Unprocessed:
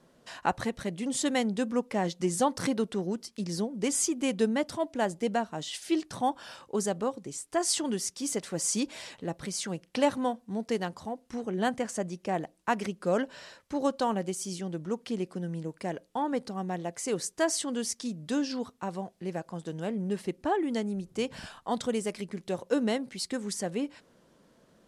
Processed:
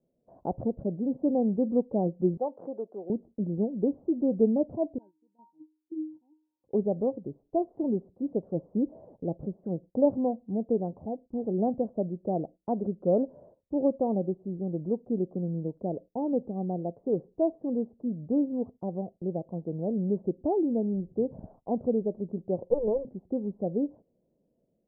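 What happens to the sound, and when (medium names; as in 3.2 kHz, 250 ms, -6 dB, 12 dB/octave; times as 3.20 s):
2.37–3.10 s: high-pass 640 Hz
4.98–6.64 s: feedback comb 310 Hz, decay 0.44 s, harmonics odd, mix 100%
22.63–23.05 s: comb filter that takes the minimum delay 2 ms
whole clip: gate -48 dBFS, range -14 dB; steep low-pass 680 Hz 36 dB/octave; level rider gain up to 3.5 dB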